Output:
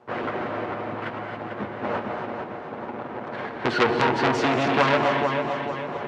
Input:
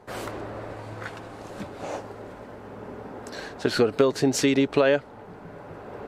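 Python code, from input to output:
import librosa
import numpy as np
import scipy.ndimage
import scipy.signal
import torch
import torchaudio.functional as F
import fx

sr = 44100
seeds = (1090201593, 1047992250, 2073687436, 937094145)

p1 = fx.lower_of_two(x, sr, delay_ms=8.4)
p2 = fx.env_lowpass(p1, sr, base_hz=1600.0, full_db=-18.5)
p3 = fx.hpss(p2, sr, part='percussive', gain_db=9)
p4 = fx.fuzz(p3, sr, gain_db=32.0, gate_db=-34.0)
p5 = p3 + F.gain(torch.from_numpy(p4), -11.0).numpy()
p6 = fx.quant_dither(p5, sr, seeds[0], bits=10, dither='triangular')
p7 = fx.bandpass_edges(p6, sr, low_hz=140.0, high_hz=2500.0)
p8 = p7 + fx.echo_feedback(p7, sr, ms=446, feedback_pct=42, wet_db=-7.5, dry=0)
p9 = fx.rev_gated(p8, sr, seeds[1], gate_ms=300, shape='rising', drr_db=3.5)
p10 = fx.transformer_sat(p9, sr, knee_hz=2300.0)
y = F.gain(torch.from_numpy(p10), -3.0).numpy()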